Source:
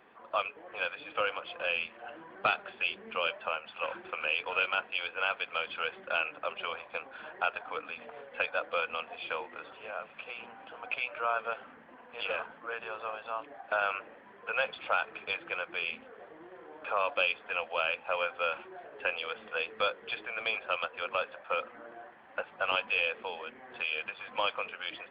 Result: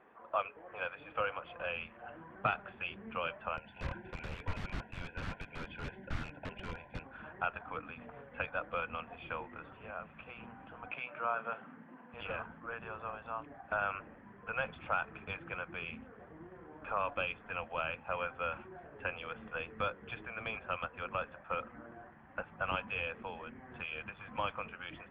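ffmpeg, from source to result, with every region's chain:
-filter_complex "[0:a]asettb=1/sr,asplit=3[s0][s1][s2];[s0]atrim=end=3.574[s3];[s1]atrim=start=3.57:end=7.04,asetpts=PTS-STARTPTS,afade=t=in:d=0.004:c=qsin,afade=t=out:st=3.466:d=0.004:c=qsin,asuperstop=centerf=1200:order=20:qfactor=3.5,aeval=exprs='(mod(33.5*val(0)+1,2)-1)/33.5':c=same[s4];[s2]atrim=start=7.036[s5];[s3][s4]acrossfade=d=0.004:c1=hsin:c2=qsin[s6];[s6][s5]acrossfade=d=0.004:c1=qsin:c2=hsin,asettb=1/sr,asplit=3[s7][s8][s9];[s7]atrim=end=10.914[s10];[s8]atrim=start=10.91:end=12.14,asetpts=PTS-STARTPTS,afade=t=in:d=0.004:c=qsin,afade=t=out:st=1.226:d=0.004:c=qsin,highpass=f=150:w=0.5412,highpass=f=150:w=1.3066,asplit=2[s11][s12];[s12]adelay=34,volume=0.224[s13];[s11][s13]amix=inputs=2:normalize=0,atrim=end_sample=54243[s14];[s9]atrim=start=12.136[s15];[s10][s14]acrossfade=d=0.004:c1=hsin:c2=qsin[s16];[s16][s15]acrossfade=d=0.004:c1=qsin:c2=hsin,lowpass=1800,asubboost=boost=9:cutoff=160,volume=0.841"

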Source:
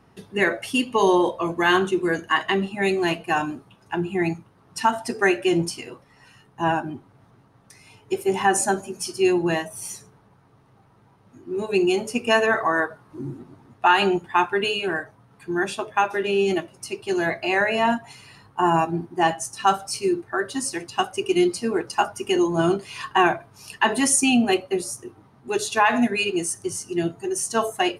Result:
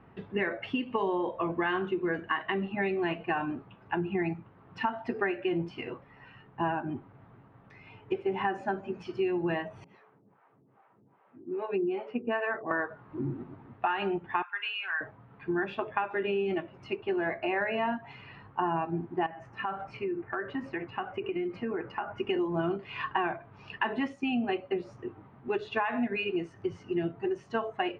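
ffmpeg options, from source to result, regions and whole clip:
-filter_complex "[0:a]asettb=1/sr,asplit=3[s0][s1][s2];[s0]atrim=end=9.844[s3];[s1]atrim=start=9.84:end=12.71,asetpts=PTS-STARTPTS,afade=t=in:d=0.004:c=qsin,afade=t=out:st=2.866:d=0.004:c=qsin,aemphasis=mode=reproduction:type=50fm,acrossover=split=480[s4][s5];[s4]aeval=exprs='val(0)*(1-1/2+1/2*cos(2*PI*2.5*n/s))':c=same[s6];[s5]aeval=exprs='val(0)*(1-1/2-1/2*cos(2*PI*2.5*n/s))':c=same[s7];[s6][s7]amix=inputs=2:normalize=0,highpass=200,lowpass=3800[s8];[s2]atrim=start=12.706[s9];[s3][s8]acrossfade=d=0.004:c1=hsin:c2=qsin[s10];[s10][s9]acrossfade=d=0.004:c1=qsin:c2=hsin,asettb=1/sr,asplit=3[s11][s12][s13];[s11]atrim=end=14.424[s14];[s12]atrim=start=14.42:end=15.01,asetpts=PTS-STARTPTS,afade=t=in:d=0.004:c=qsin,afade=t=out:st=0.586:d=0.004:c=qsin,highpass=f=1200:w=0.5412,highpass=f=1200:w=1.3066,aemphasis=mode=reproduction:type=bsi[s15];[s13]atrim=start=15.006[s16];[s14][s15]acrossfade=d=0.004:c1=hsin:c2=qsin[s17];[s17][s16]acrossfade=d=0.004:c1=qsin:c2=hsin,asettb=1/sr,asplit=3[s18][s19][s20];[s18]atrim=end=16.954[s21];[s19]atrim=start=16.95:end=17.62,asetpts=PTS-STARTPTS,afade=t=in:d=0.004:c=qsin,afade=t=out:st=0.666:d=0.004:c=qsin,lowpass=f=2400:p=1,equalizer=f=140:w=1.8:g=-6[s22];[s20]atrim=start=17.616[s23];[s21][s22]acrossfade=d=0.004:c1=hsin:c2=qsin[s24];[s24][s23]acrossfade=d=0.004:c1=qsin:c2=hsin,asettb=1/sr,asplit=3[s25][s26][s27];[s25]atrim=end=19.264[s28];[s26]atrim=start=19.26:end=22.18,asetpts=PTS-STARTPTS,afade=t=in:d=0.004:c=qsin,afade=t=out:st=2.916:d=0.004:c=qsin,highshelf=f=2900:t=q:w=1.5:g=-8,acompressor=threshold=0.0355:ratio=6:attack=3.2:release=140:knee=1:detection=peak[s29];[s27]atrim=start=22.176[s30];[s28][s29]acrossfade=d=0.004:c1=hsin:c2=qsin[s31];[s31][s30]acrossfade=d=0.004:c1=qsin:c2=hsin,acompressor=threshold=0.0447:ratio=6,lowpass=f=2700:w=0.5412,lowpass=f=2700:w=1.3066"

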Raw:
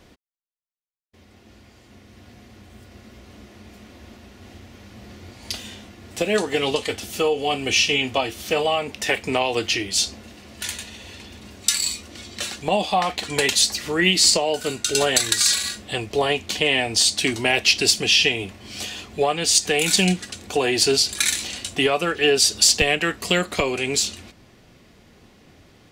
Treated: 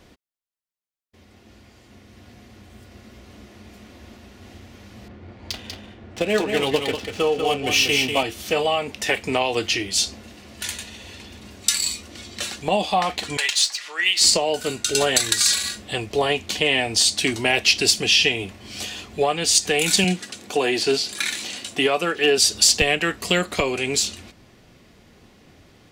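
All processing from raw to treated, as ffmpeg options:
-filter_complex "[0:a]asettb=1/sr,asplit=3[s0][s1][s2];[s0]atrim=end=5.084[s3];[s1]atrim=start=5.08:end=8.23,asetpts=PTS-STARTPTS,afade=t=in:d=0.004:c=qsin,afade=t=out:st=3.146:d=0.004:c=qsin,adynamicsmooth=sensitivity=5:basefreq=1900,aecho=1:1:192:0.501,atrim=end_sample=138915[s4];[s2]atrim=start=8.226[s5];[s3][s4]acrossfade=d=0.004:c1=hsin:c2=qsin[s6];[s6][s5]acrossfade=d=0.004:c1=qsin:c2=hsin,asettb=1/sr,asplit=3[s7][s8][s9];[s7]atrim=end=13.374[s10];[s8]atrim=start=13.37:end=14.21,asetpts=PTS-STARTPTS,afade=t=in:d=0.004:c=qsin,afade=t=out:st=0.836:d=0.004:c=qsin,highpass=1200,adynamicsmooth=sensitivity=2.5:basefreq=6800[s11];[s9]atrim=start=14.206[s12];[s10][s11]acrossfade=d=0.004:c1=hsin:c2=qsin[s13];[s13][s12]acrossfade=d=0.004:c1=qsin:c2=hsin,asettb=1/sr,asplit=3[s14][s15][s16];[s14]atrim=end=20.044[s17];[s15]atrim=start=20.04:end=22.38,asetpts=PTS-STARTPTS,afade=t=in:d=0.004:c=qsin,afade=t=out:st=2.336:d=0.004:c=qsin,highpass=160,acrossover=split=4000[s18][s19];[s19]acompressor=threshold=0.0355:ratio=4:attack=1:release=60[s20];[s18][s20]amix=inputs=2:normalize=0,asoftclip=type=hard:threshold=0.335[s21];[s16]atrim=start=22.376[s22];[s17][s21]acrossfade=d=0.004:c1=hsin:c2=qsin[s23];[s23][s22]acrossfade=d=0.004:c1=qsin:c2=hsin"

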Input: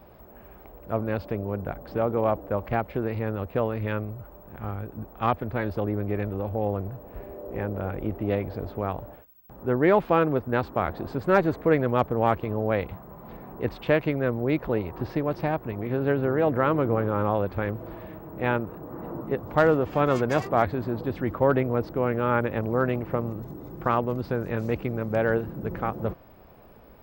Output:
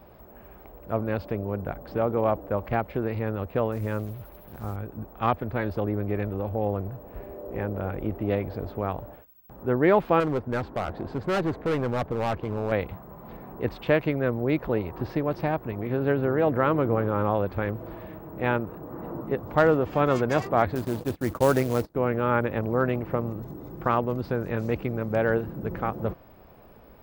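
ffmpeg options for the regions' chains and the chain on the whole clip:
-filter_complex "[0:a]asettb=1/sr,asplit=3[s0][s1][s2];[s0]atrim=end=3.724[s3];[s1]atrim=start=3.72:end=4.76,asetpts=PTS-STARTPTS,afade=t=in:d=0.004:c=qsin,afade=t=out:st=1.036:d=0.004:c=qsin,equalizer=f=3600:t=o:w=1.9:g=-9.5,acrusher=bits=7:mix=0:aa=0.5[s4];[s2]atrim=start=4.756[s5];[s3][s4]acrossfade=d=0.004:c1=hsin:c2=qsin[s6];[s6][s5]acrossfade=d=0.004:c1=qsin:c2=hsin,asettb=1/sr,asplit=3[s7][s8][s9];[s7]atrim=end=10.204[s10];[s8]atrim=start=10.2:end=12.72,asetpts=PTS-STARTPTS,afade=t=in:d=0.004:c=qsin,afade=t=out:st=2.516:d=0.004:c=qsin,lowpass=f=3200:p=1,bandreject=f=1200:w=16,volume=12.6,asoftclip=hard,volume=0.0794[s11];[s9]atrim=start=12.716[s12];[s10][s11]acrossfade=d=0.004:c1=hsin:c2=qsin[s13];[s13][s12]acrossfade=d=0.004:c1=qsin:c2=hsin,asettb=1/sr,asplit=3[s14][s15][s16];[s14]atrim=end=20.754[s17];[s15]atrim=start=20.75:end=21.95,asetpts=PTS-STARTPTS,afade=t=in:d=0.004:c=qsin,afade=t=out:st=1.196:d=0.004:c=qsin,agate=range=0.0562:threshold=0.0178:ratio=16:release=100:detection=peak,acrusher=bits=4:mode=log:mix=0:aa=0.000001[s18];[s16]atrim=start=21.946[s19];[s17][s18]acrossfade=d=0.004:c1=hsin:c2=qsin[s20];[s20][s19]acrossfade=d=0.004:c1=qsin:c2=hsin"

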